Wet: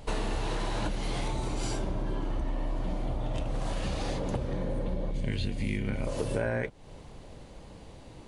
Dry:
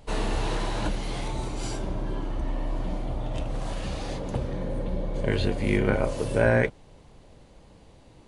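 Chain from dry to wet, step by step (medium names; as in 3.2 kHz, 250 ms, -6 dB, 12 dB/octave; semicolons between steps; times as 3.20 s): 5.11–6.07 s: high-order bell 750 Hz -10 dB 2.5 oct; compression 6:1, threshold -32 dBFS, peak gain reduction 15 dB; trim +4.5 dB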